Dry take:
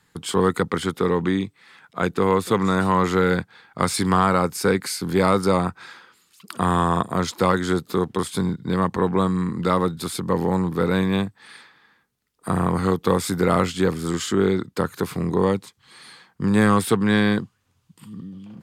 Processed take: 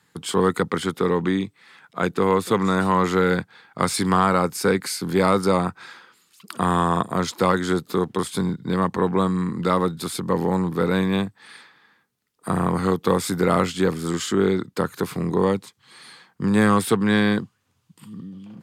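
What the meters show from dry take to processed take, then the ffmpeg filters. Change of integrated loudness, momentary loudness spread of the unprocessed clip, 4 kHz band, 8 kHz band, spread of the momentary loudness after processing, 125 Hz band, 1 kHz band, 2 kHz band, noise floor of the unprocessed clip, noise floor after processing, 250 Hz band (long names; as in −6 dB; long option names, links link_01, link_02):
0.0 dB, 9 LU, 0.0 dB, 0.0 dB, 9 LU, −1.0 dB, 0.0 dB, 0.0 dB, −67 dBFS, −67 dBFS, 0.0 dB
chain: -af "highpass=100"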